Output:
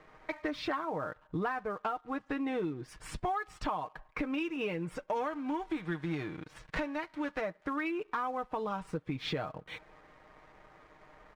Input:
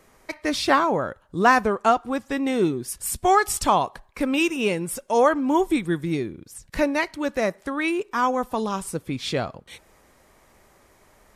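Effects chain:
0:05.15–0:07.40: spectral envelope flattened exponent 0.6
low-pass filter 2,700 Hz 12 dB per octave
parametric band 1,300 Hz +4.5 dB 2 octaves
comb filter 6.5 ms, depth 56%
downward compressor 12 to 1, threshold −29 dBFS, peak gain reduction 21.5 dB
leveller curve on the samples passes 1
level −5.5 dB

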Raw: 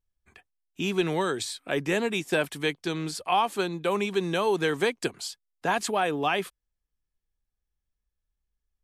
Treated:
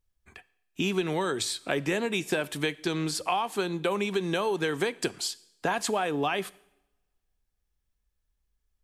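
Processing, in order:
downward compressor, threshold −29 dBFS, peak gain reduction 10 dB
on a send: convolution reverb RT60 0.90 s, pre-delay 3 ms, DRR 18 dB
on the sum: level +4.5 dB

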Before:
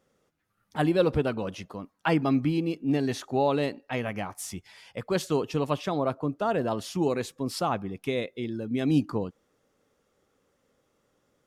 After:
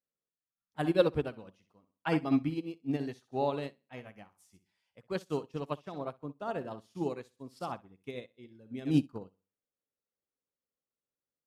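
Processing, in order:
flutter between parallel walls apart 10.8 metres, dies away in 0.39 s
expander for the loud parts 2.5 to 1, over −38 dBFS

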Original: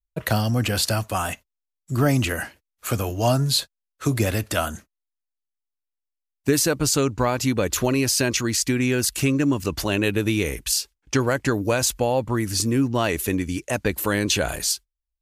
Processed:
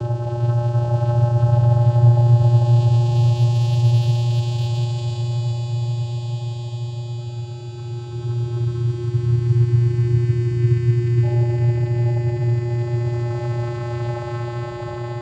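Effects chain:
extreme stretch with random phases 10×, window 0.50 s, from 0:03.15
channel vocoder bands 8, square 119 Hz
time-frequency box erased 0:08.63–0:11.23, 370–990 Hz
on a send: feedback delay with all-pass diffusion 1,661 ms, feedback 57%, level −6 dB
on the sum: slew-rate limiting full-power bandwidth 110 Hz
level +4.5 dB

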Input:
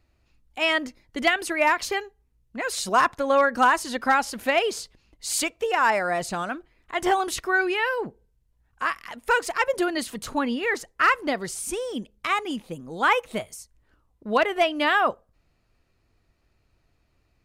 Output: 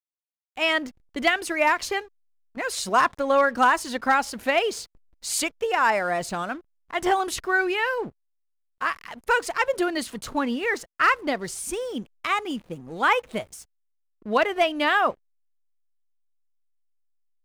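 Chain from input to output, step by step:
0:02.01–0:02.57: parametric band 210 Hz −12 dB 1.3 octaves
slack as between gear wheels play −43 dBFS

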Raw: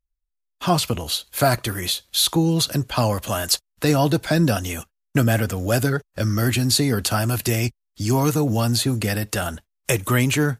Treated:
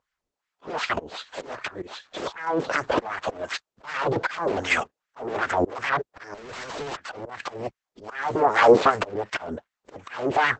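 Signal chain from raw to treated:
sine wavefolder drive 18 dB, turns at −5.5 dBFS
auto-filter band-pass sine 2.6 Hz 370–1,800 Hz
0:06.34–0:06.97: tube saturation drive 33 dB, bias 0.3
volume swells 676 ms
level +3 dB
Opus 10 kbit/s 48,000 Hz

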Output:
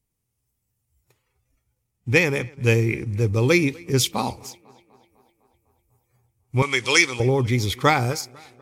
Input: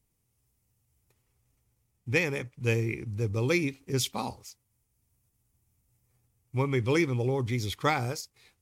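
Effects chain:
0:06.62–0:07.20: meter weighting curve ITU-R 468
noise reduction from a noise print of the clip's start 11 dB
tape delay 250 ms, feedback 65%, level −24 dB, low-pass 4,400 Hz
level +8.5 dB

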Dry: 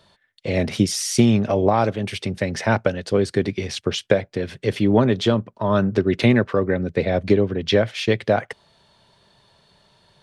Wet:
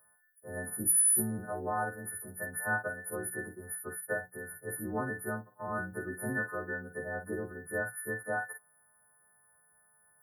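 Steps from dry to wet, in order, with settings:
every partial snapped to a pitch grid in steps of 3 semitones
linear-phase brick-wall band-stop 2,000–8,700 Hz
first-order pre-emphasis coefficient 0.9
mains-hum notches 60/120/180/240/300 Hz
on a send: convolution reverb, pre-delay 44 ms, DRR 6 dB

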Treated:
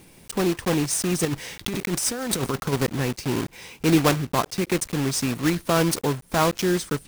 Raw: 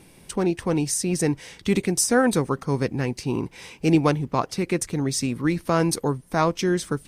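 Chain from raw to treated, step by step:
one scale factor per block 3 bits
0:01.25–0:02.73: compressor whose output falls as the input rises −26 dBFS, ratio −1

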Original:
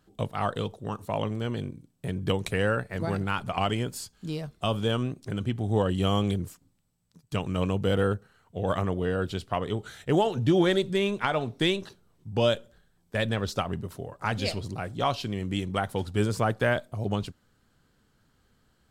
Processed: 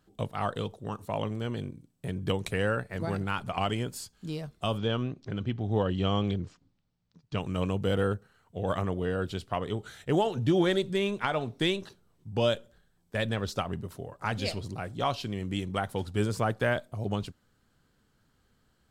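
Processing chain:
0:04.78–0:07.37: low-pass filter 5,400 Hz 24 dB per octave
level −2.5 dB

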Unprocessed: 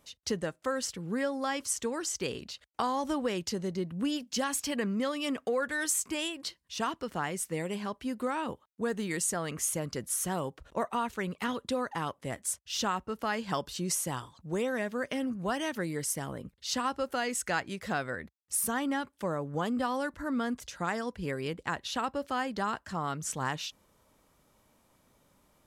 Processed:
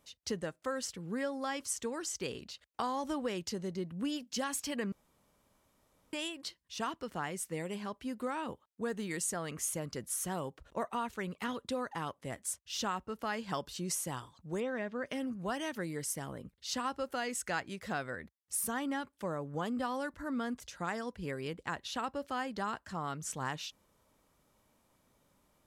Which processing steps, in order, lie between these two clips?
0:04.92–0:06.13: fill with room tone
0:14.60–0:15.06: Bessel low-pass filter 3,200 Hz, order 2
level −4.5 dB

